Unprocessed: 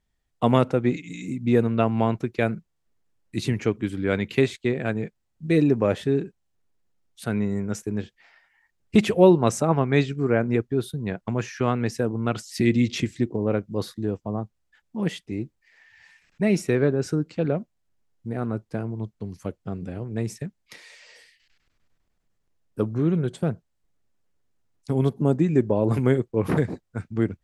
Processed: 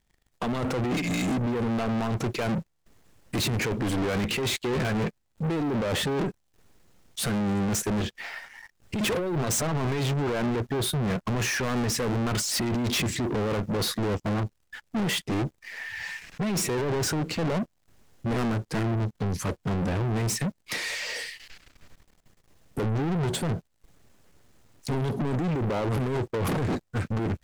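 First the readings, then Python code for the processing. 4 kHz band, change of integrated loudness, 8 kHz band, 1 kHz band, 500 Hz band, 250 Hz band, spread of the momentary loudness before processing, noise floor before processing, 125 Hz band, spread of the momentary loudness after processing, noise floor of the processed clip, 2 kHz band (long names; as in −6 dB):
+7.0 dB, −3.5 dB, +9.0 dB, −1.5 dB, −6.0 dB, −4.0 dB, 14 LU, −74 dBFS, −2.0 dB, 8 LU, −71 dBFS, +1.5 dB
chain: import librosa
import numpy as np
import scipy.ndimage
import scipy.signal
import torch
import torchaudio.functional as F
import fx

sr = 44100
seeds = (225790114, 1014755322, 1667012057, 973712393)

y = fx.over_compress(x, sr, threshold_db=-27.0, ratio=-1.0)
y = 10.0 ** (-27.0 / 20.0) * np.tanh(y / 10.0 ** (-27.0 / 20.0))
y = fx.leveller(y, sr, passes=3)
y = y * 10.0 ** (3.0 / 20.0)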